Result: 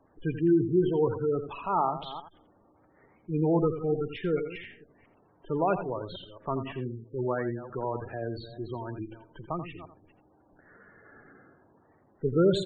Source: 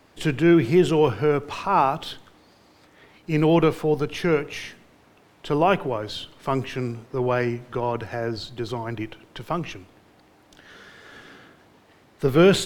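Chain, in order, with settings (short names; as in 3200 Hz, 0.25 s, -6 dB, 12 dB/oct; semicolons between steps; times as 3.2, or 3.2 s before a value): reverse delay 0.22 s, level -14 dB; low-pass opened by the level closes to 1600 Hz, open at -16.5 dBFS; spectral gate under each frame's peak -15 dB strong; on a send: echo 85 ms -10.5 dB; on the sum: gain -7 dB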